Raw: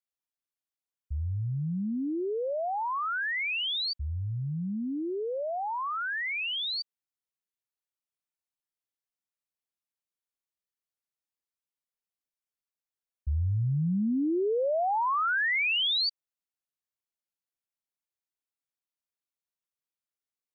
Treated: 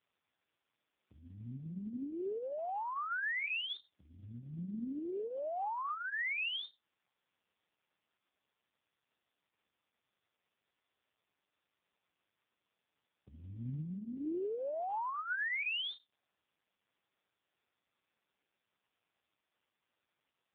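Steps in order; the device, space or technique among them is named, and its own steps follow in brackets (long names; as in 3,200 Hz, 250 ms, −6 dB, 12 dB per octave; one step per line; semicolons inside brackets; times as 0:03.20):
0:02.52–0:03.16: high-pass filter 75 Hz 12 dB per octave
voicemail (band-pass filter 320–3,100 Hz; downward compressor 6 to 1, threshold −40 dBFS, peak gain reduction 12.5 dB; level +7.5 dB; AMR narrowband 4.75 kbit/s 8,000 Hz)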